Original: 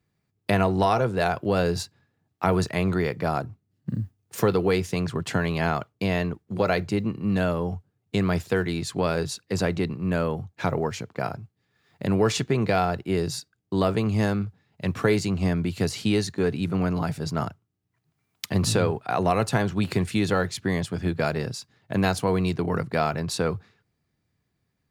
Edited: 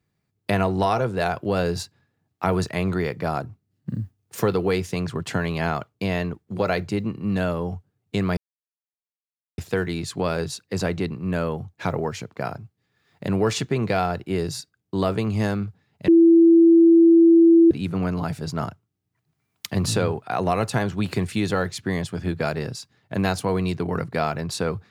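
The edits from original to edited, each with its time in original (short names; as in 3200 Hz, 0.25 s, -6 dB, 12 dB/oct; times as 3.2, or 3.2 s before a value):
8.37 insert silence 1.21 s
14.87–16.5 bleep 333 Hz -9.5 dBFS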